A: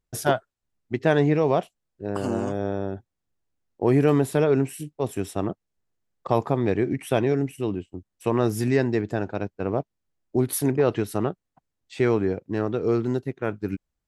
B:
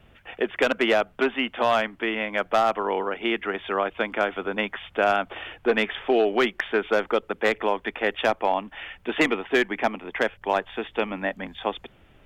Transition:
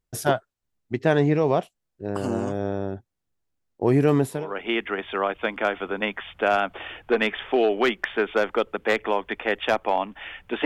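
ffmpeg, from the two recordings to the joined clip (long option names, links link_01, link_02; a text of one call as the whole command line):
ffmpeg -i cue0.wav -i cue1.wav -filter_complex "[0:a]apad=whole_dur=10.65,atrim=end=10.65,atrim=end=4.59,asetpts=PTS-STARTPTS[link_01];[1:a]atrim=start=2.81:end=9.21,asetpts=PTS-STARTPTS[link_02];[link_01][link_02]acrossfade=duration=0.34:curve1=qua:curve2=qua" out.wav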